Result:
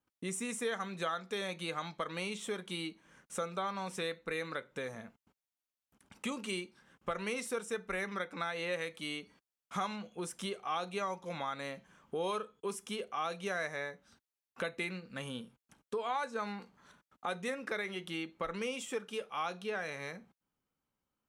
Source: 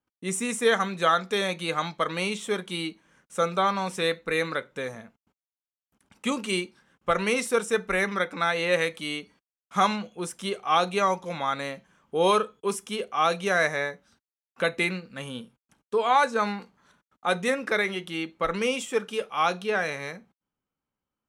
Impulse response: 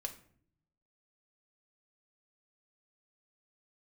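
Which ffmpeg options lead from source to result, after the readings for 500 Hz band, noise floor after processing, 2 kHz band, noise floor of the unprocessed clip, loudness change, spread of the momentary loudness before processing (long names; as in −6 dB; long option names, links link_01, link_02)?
−12.0 dB, below −85 dBFS, −12.0 dB, below −85 dBFS, −12.0 dB, 12 LU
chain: -af "acompressor=threshold=-40dB:ratio=2.5"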